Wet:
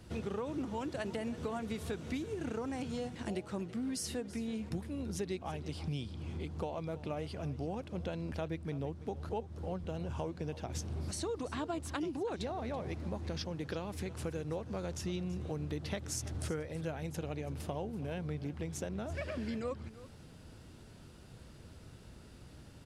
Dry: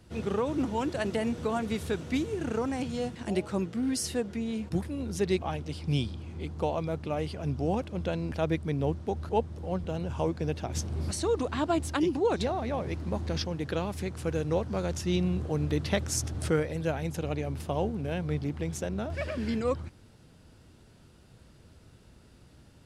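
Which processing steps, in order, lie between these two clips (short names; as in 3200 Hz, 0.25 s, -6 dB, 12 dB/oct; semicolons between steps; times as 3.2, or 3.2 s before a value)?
compressor 4:1, threshold -39 dBFS, peak gain reduction 15 dB; echo 0.331 s -16.5 dB; gain +2 dB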